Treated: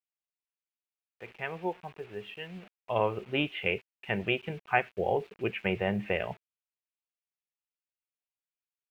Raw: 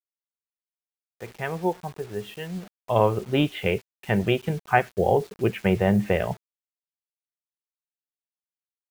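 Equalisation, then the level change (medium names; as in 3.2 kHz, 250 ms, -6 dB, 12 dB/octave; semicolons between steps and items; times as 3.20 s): tone controls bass -5 dB, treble -14 dB; peaking EQ 2.6 kHz +11 dB 0.74 oct; -7.5 dB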